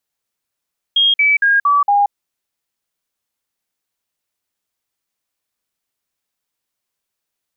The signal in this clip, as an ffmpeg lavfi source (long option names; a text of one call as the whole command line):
ffmpeg -f lavfi -i "aevalsrc='0.335*clip(min(mod(t,0.23),0.18-mod(t,0.23))/0.005,0,1)*sin(2*PI*3250*pow(2,-floor(t/0.23)/2)*mod(t,0.23))':duration=1.15:sample_rate=44100" out.wav